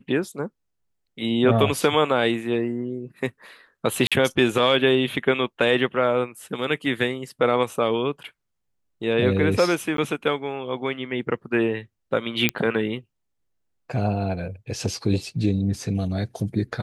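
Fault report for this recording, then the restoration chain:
4.07–4.12 s: dropout 46 ms
9.97–9.98 s: dropout 12 ms
12.49 s: pop -5 dBFS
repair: de-click; interpolate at 4.07 s, 46 ms; interpolate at 9.97 s, 12 ms

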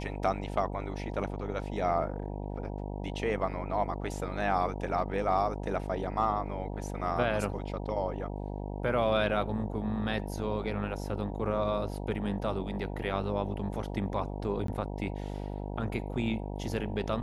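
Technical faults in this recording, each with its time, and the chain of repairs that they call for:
buzz 50 Hz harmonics 19 -37 dBFS
14.67–14.68 s: dropout 13 ms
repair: de-hum 50 Hz, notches 19; interpolate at 14.67 s, 13 ms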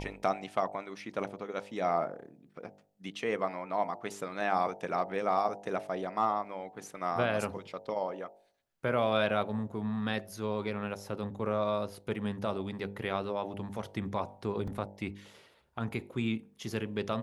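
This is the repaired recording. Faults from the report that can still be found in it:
nothing left

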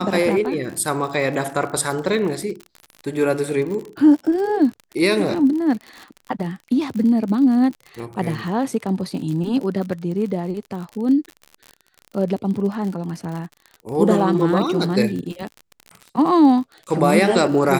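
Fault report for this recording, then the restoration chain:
crackle 54 per s -28 dBFS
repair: de-click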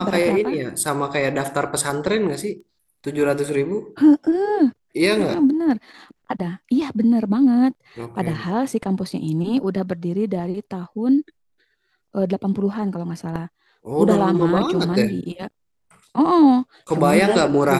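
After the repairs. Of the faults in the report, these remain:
nothing left

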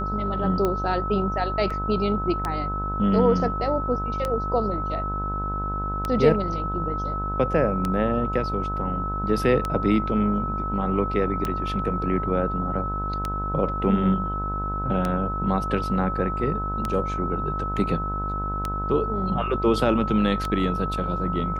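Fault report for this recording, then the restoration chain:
buzz 50 Hz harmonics 30 -30 dBFS
tick 33 1/3 rpm -12 dBFS
whine 1.3 kHz -28 dBFS
1.70 s: dropout 4.8 ms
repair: de-click; de-hum 50 Hz, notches 30; band-stop 1.3 kHz, Q 30; interpolate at 1.70 s, 4.8 ms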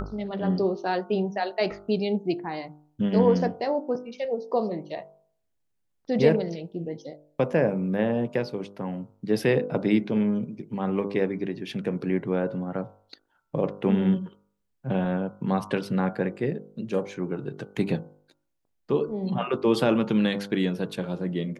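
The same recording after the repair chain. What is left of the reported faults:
nothing left

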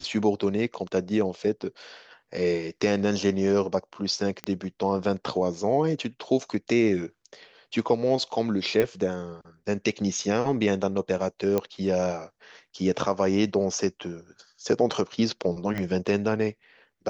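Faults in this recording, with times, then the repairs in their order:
4.44 s: pop -16 dBFS
8.80 s: pop -12 dBFS
11.58 s: pop -12 dBFS
15.78 s: pop -17 dBFS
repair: de-click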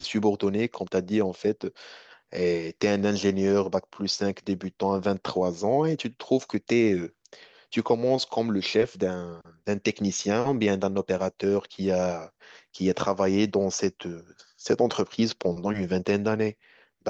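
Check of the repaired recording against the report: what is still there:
15.78 s: pop

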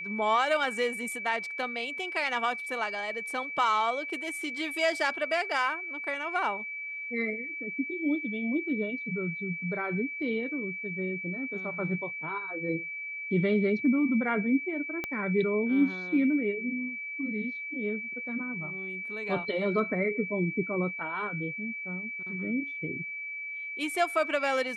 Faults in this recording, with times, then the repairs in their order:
whine 2.3 kHz -35 dBFS
15.04 s: pop -18 dBFS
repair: de-click; band-stop 2.3 kHz, Q 30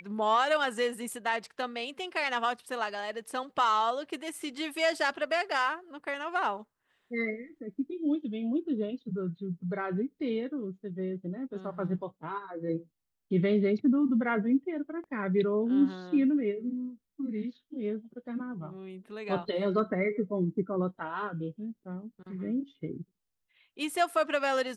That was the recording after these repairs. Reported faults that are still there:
15.04 s: pop

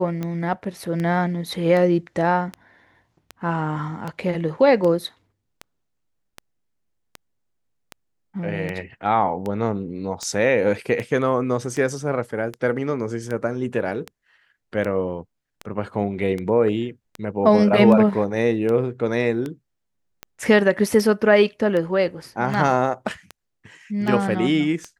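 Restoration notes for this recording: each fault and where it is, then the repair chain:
tick 78 rpm -16 dBFS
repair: de-click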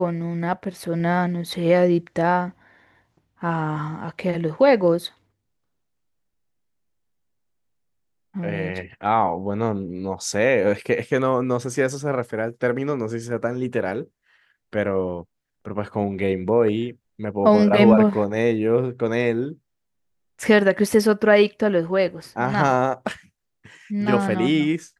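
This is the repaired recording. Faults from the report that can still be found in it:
nothing left

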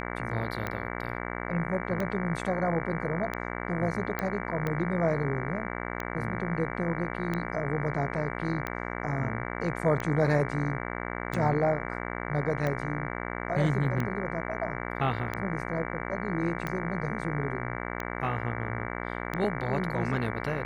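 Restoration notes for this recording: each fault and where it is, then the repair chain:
buzz 60 Hz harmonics 38 -35 dBFS
tick 45 rpm -18 dBFS
4.19 s: pop -16 dBFS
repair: de-click; de-hum 60 Hz, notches 38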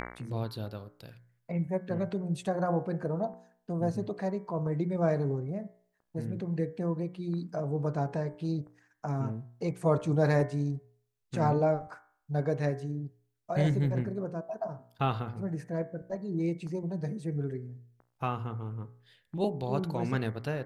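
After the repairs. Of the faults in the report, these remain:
nothing left

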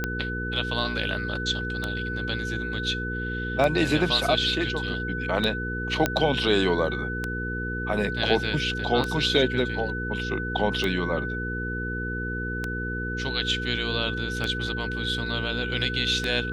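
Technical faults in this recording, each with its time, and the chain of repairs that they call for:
hum 60 Hz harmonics 8 -32 dBFS
tick 33 1/3 rpm -13 dBFS
whine 1.5 kHz -31 dBFS
6.06 s: pop -7 dBFS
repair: de-click; de-hum 60 Hz, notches 8; band-stop 1.5 kHz, Q 30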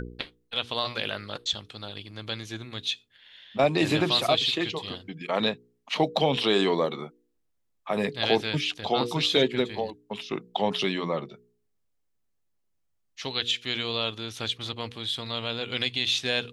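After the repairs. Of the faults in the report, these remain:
nothing left

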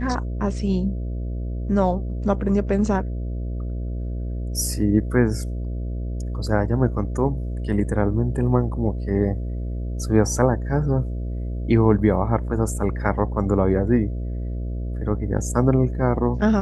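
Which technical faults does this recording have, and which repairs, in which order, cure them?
buzz 60 Hz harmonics 11 -27 dBFS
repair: de-hum 60 Hz, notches 11

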